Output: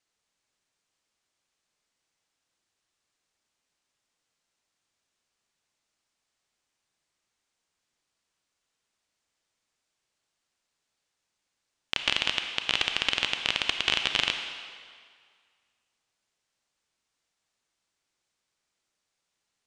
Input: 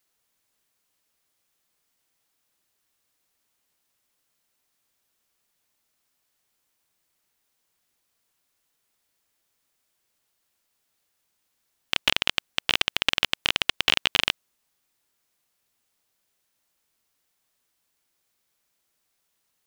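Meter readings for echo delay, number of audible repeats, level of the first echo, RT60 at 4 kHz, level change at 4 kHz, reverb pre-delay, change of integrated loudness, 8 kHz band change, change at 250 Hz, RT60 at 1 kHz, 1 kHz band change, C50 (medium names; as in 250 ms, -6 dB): no echo, no echo, no echo, 1.7 s, -3.0 dB, 28 ms, -3.0 dB, -4.0 dB, -3.5 dB, 2.0 s, -3.0 dB, 6.0 dB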